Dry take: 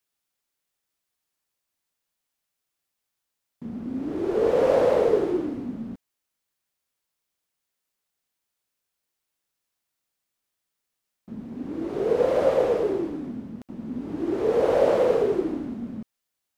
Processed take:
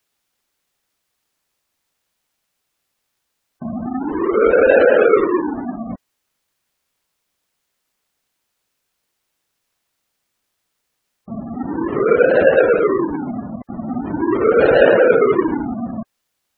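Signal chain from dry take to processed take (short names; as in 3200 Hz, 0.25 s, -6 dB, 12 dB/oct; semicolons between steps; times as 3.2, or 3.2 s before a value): half-waves squared off; spectral gate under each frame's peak -20 dB strong; 3.86–5.89 bell 120 Hz -12.5 dB 0.93 oct; gain +6 dB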